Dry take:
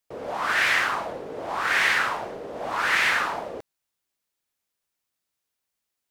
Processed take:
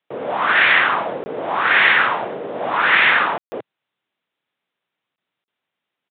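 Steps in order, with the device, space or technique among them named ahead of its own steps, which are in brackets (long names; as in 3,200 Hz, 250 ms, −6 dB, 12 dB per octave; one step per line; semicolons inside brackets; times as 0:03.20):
call with lost packets (high-pass filter 120 Hz 24 dB per octave; downsampling to 8,000 Hz; dropped packets bursts)
level +8 dB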